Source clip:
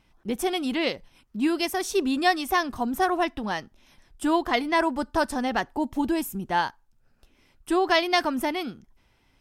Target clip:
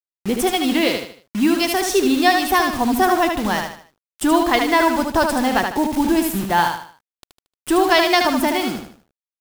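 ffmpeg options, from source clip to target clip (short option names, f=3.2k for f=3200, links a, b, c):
-filter_complex "[0:a]asplit=2[a][b];[b]acompressor=threshold=-35dB:ratio=6,volume=3dB[c];[a][c]amix=inputs=2:normalize=0,acrusher=bits=5:mix=0:aa=0.000001,aecho=1:1:76|152|228|304:0.562|0.202|0.0729|0.0262,volume=4dB"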